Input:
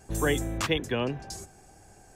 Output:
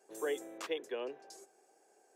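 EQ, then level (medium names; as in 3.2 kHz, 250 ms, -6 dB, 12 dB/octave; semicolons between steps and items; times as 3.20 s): ladder high-pass 360 Hz, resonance 50%; -4.5 dB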